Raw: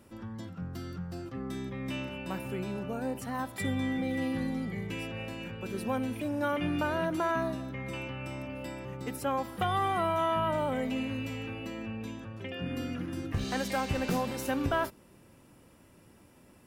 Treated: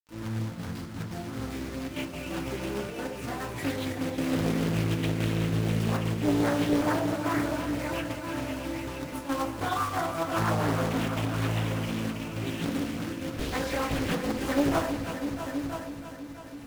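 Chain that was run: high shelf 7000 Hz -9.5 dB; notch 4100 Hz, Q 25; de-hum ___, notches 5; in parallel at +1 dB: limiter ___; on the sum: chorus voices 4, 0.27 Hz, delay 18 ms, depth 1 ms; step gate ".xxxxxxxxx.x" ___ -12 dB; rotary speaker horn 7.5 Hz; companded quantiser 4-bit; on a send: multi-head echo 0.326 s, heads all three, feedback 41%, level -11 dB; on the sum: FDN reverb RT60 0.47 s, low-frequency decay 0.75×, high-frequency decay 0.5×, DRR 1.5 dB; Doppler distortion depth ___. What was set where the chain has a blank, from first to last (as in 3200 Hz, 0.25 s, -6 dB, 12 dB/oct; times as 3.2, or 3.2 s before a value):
48.22 Hz, -26.5 dBFS, 176 bpm, 0.82 ms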